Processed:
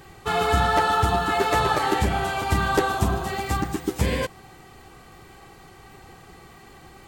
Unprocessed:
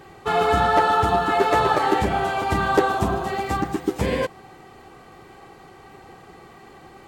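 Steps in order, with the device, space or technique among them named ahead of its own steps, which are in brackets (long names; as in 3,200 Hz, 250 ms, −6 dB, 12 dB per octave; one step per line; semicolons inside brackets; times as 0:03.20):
smiley-face EQ (low-shelf EQ 87 Hz +8 dB; parametric band 500 Hz −4.5 dB 2.6 octaves; high-shelf EQ 5,400 Hz +7 dB)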